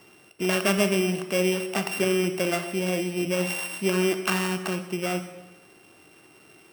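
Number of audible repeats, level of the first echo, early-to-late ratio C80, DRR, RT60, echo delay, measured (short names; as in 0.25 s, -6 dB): none, none, 11.0 dB, 8.0 dB, 1.2 s, none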